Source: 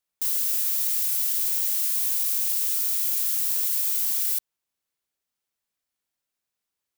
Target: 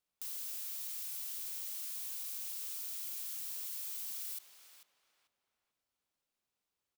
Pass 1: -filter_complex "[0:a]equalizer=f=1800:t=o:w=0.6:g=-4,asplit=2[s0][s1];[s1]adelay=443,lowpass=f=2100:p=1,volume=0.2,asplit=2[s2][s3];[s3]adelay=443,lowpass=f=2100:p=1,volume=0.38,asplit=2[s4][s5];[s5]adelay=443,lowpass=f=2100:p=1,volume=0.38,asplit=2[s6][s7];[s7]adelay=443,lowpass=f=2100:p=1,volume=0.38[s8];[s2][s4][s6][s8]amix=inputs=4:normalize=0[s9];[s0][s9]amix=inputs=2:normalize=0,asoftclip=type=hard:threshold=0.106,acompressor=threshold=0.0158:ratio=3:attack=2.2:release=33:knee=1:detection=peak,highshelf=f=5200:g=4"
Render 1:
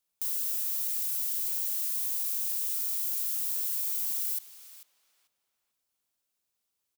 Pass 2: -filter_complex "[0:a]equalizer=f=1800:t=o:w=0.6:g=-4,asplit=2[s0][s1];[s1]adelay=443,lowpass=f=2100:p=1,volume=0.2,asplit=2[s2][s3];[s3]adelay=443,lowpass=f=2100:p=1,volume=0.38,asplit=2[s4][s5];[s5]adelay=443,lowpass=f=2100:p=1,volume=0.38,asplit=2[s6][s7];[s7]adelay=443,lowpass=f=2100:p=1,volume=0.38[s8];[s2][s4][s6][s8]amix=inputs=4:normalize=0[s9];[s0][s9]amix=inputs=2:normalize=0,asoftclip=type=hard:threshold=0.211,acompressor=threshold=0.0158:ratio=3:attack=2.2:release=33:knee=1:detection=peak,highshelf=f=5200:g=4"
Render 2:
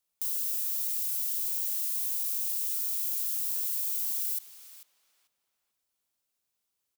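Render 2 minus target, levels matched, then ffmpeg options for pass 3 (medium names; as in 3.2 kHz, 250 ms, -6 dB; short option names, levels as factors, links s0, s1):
4 kHz band -6.0 dB
-filter_complex "[0:a]equalizer=f=1800:t=o:w=0.6:g=-4,asplit=2[s0][s1];[s1]adelay=443,lowpass=f=2100:p=1,volume=0.2,asplit=2[s2][s3];[s3]adelay=443,lowpass=f=2100:p=1,volume=0.38,asplit=2[s4][s5];[s5]adelay=443,lowpass=f=2100:p=1,volume=0.38,asplit=2[s6][s7];[s7]adelay=443,lowpass=f=2100:p=1,volume=0.38[s8];[s2][s4][s6][s8]amix=inputs=4:normalize=0[s9];[s0][s9]amix=inputs=2:normalize=0,asoftclip=type=hard:threshold=0.211,acompressor=threshold=0.0158:ratio=3:attack=2.2:release=33:knee=1:detection=peak,highshelf=f=5200:g=-7.5"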